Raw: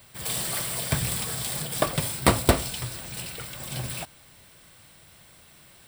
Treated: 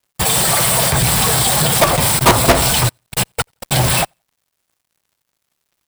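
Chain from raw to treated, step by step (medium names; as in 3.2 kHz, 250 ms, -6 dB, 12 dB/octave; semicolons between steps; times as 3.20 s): coarse spectral quantiser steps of 15 dB; peaking EQ 850 Hz +7.5 dB 1 oct; level held to a coarse grid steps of 18 dB; fuzz box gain 38 dB, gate -47 dBFS; feedback delay 86 ms, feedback 25%, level -23 dB; upward expansion 2.5:1, over -31 dBFS; trim +7.5 dB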